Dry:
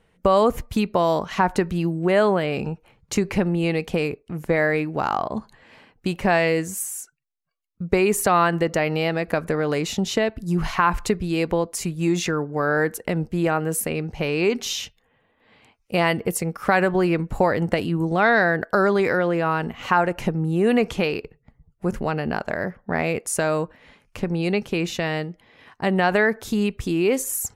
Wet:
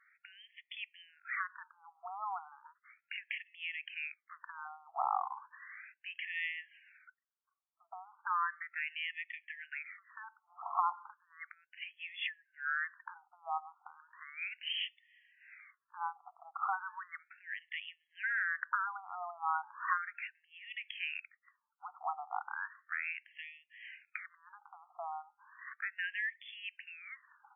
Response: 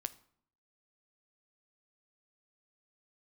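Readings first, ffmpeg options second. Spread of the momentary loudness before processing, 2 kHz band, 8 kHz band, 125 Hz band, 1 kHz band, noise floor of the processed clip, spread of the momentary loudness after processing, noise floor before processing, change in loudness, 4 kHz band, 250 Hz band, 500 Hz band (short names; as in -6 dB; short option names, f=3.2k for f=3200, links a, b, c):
9 LU, -12.5 dB, under -40 dB, under -40 dB, -14.0 dB, under -85 dBFS, 19 LU, -66 dBFS, -17.0 dB, -12.5 dB, under -40 dB, -37.0 dB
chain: -af "acompressor=threshold=-31dB:ratio=6,afftfilt=real='re*between(b*sr/1024,960*pow(2500/960,0.5+0.5*sin(2*PI*0.35*pts/sr))/1.41,960*pow(2500/960,0.5+0.5*sin(2*PI*0.35*pts/sr))*1.41)':imag='im*between(b*sr/1024,960*pow(2500/960,0.5+0.5*sin(2*PI*0.35*pts/sr))/1.41,960*pow(2500/960,0.5+0.5*sin(2*PI*0.35*pts/sr))*1.41)':win_size=1024:overlap=0.75,volume=3.5dB"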